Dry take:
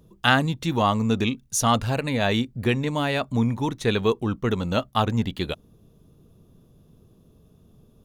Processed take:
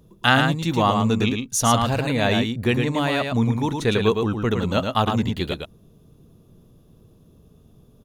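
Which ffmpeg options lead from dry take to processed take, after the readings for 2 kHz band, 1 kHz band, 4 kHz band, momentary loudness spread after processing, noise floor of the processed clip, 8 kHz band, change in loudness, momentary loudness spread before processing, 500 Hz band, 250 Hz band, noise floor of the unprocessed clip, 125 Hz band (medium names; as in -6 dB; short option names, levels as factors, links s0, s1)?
+2.5 dB, +2.5 dB, +2.5 dB, 5 LU, -54 dBFS, +2.5 dB, +2.5 dB, 5 LU, +2.5 dB, +2.5 dB, -58 dBFS, +2.5 dB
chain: -af "aecho=1:1:110:0.562,volume=1.19"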